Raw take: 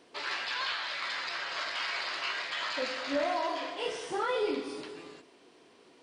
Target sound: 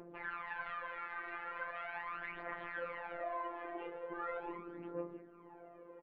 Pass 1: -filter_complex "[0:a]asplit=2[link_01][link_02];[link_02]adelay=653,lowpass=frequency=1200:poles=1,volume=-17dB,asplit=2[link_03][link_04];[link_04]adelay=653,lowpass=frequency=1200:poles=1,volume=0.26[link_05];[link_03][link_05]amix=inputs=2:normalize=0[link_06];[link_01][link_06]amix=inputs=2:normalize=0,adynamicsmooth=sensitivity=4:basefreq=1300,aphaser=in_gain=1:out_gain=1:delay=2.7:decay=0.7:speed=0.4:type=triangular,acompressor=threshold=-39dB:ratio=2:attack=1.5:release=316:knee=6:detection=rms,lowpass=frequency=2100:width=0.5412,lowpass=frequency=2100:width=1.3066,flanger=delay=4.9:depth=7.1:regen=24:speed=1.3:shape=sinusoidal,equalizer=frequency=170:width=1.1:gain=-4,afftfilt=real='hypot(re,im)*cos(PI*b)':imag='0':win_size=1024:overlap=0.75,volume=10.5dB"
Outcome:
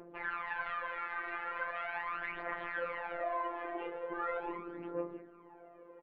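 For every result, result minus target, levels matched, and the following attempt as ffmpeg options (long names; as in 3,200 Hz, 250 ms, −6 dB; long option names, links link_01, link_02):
downward compressor: peak gain reduction −4.5 dB; 125 Hz band −3.5 dB
-filter_complex "[0:a]asplit=2[link_01][link_02];[link_02]adelay=653,lowpass=frequency=1200:poles=1,volume=-17dB,asplit=2[link_03][link_04];[link_04]adelay=653,lowpass=frequency=1200:poles=1,volume=0.26[link_05];[link_03][link_05]amix=inputs=2:normalize=0[link_06];[link_01][link_06]amix=inputs=2:normalize=0,adynamicsmooth=sensitivity=4:basefreq=1300,aphaser=in_gain=1:out_gain=1:delay=2.7:decay=0.7:speed=0.4:type=triangular,acompressor=threshold=-48.5dB:ratio=2:attack=1.5:release=316:knee=6:detection=rms,lowpass=frequency=2100:width=0.5412,lowpass=frequency=2100:width=1.3066,flanger=delay=4.9:depth=7.1:regen=24:speed=1.3:shape=sinusoidal,equalizer=frequency=170:width=1.1:gain=-4,afftfilt=real='hypot(re,im)*cos(PI*b)':imag='0':win_size=1024:overlap=0.75,volume=10.5dB"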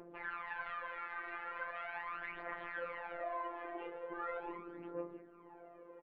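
125 Hz band −3.5 dB
-filter_complex "[0:a]asplit=2[link_01][link_02];[link_02]adelay=653,lowpass=frequency=1200:poles=1,volume=-17dB,asplit=2[link_03][link_04];[link_04]adelay=653,lowpass=frequency=1200:poles=1,volume=0.26[link_05];[link_03][link_05]amix=inputs=2:normalize=0[link_06];[link_01][link_06]amix=inputs=2:normalize=0,adynamicsmooth=sensitivity=4:basefreq=1300,aphaser=in_gain=1:out_gain=1:delay=2.7:decay=0.7:speed=0.4:type=triangular,acompressor=threshold=-48.5dB:ratio=2:attack=1.5:release=316:knee=6:detection=rms,lowpass=frequency=2100:width=0.5412,lowpass=frequency=2100:width=1.3066,flanger=delay=4.9:depth=7.1:regen=24:speed=1.3:shape=sinusoidal,afftfilt=real='hypot(re,im)*cos(PI*b)':imag='0':win_size=1024:overlap=0.75,volume=10.5dB"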